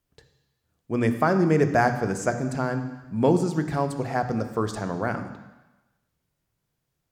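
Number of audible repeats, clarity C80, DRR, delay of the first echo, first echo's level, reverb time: no echo, 11.0 dB, 7.5 dB, no echo, no echo, 1.1 s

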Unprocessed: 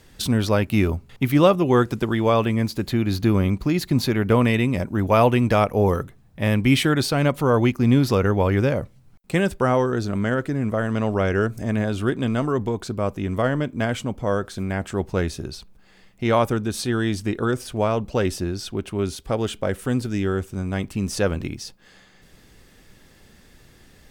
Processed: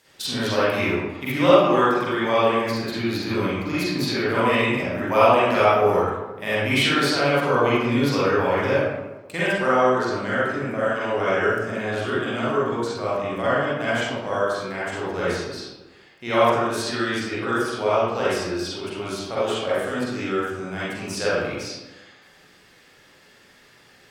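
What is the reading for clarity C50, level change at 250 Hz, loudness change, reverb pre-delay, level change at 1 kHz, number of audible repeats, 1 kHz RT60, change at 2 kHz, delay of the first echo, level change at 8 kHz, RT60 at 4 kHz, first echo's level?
-5.0 dB, -4.0 dB, 0.0 dB, 38 ms, +4.0 dB, no echo, 1.1 s, +5.0 dB, no echo, -1.0 dB, 0.65 s, no echo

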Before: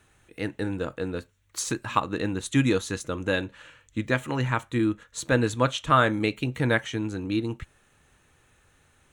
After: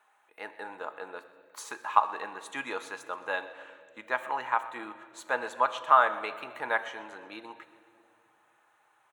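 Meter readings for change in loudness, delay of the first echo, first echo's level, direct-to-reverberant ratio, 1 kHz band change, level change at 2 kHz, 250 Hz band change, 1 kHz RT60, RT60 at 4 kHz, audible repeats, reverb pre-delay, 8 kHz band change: -3.5 dB, 126 ms, -18.5 dB, 9.0 dB, +2.0 dB, -3.0 dB, -21.5 dB, 1.8 s, 1.7 s, 4, 5 ms, -13.0 dB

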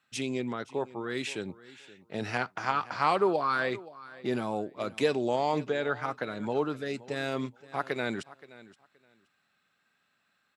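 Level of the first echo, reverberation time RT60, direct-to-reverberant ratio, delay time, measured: -19.0 dB, no reverb, no reverb, 523 ms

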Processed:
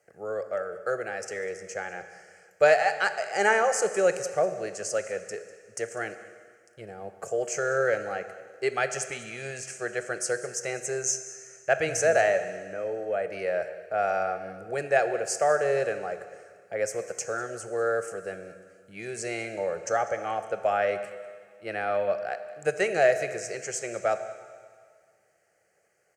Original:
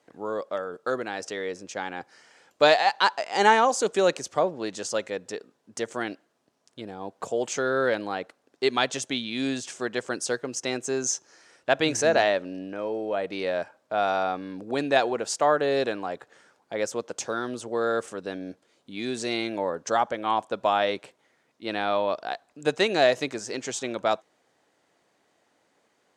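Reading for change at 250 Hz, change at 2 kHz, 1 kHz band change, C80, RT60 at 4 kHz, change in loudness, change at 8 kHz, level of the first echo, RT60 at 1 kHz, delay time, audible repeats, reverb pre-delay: -9.5 dB, 0.0 dB, -4.0 dB, 11.5 dB, 1.9 s, -1.5 dB, +0.5 dB, -19.0 dB, 1.9 s, 198 ms, 1, 22 ms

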